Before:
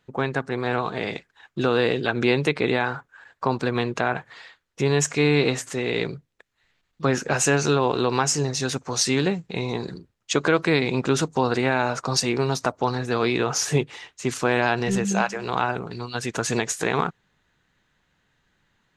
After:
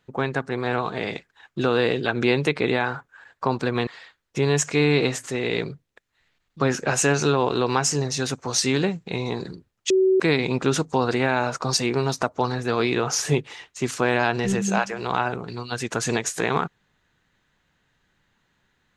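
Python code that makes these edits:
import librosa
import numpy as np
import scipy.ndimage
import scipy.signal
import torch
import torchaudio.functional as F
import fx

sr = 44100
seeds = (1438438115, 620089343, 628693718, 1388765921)

y = fx.edit(x, sr, fx.cut(start_s=3.87, length_s=0.43),
    fx.bleep(start_s=10.33, length_s=0.3, hz=378.0, db=-14.5), tone=tone)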